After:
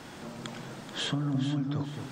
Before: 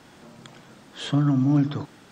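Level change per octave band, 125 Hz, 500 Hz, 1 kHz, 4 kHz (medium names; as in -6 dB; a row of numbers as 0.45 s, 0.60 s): -8.0 dB, -4.0 dB, -4.5 dB, +2.0 dB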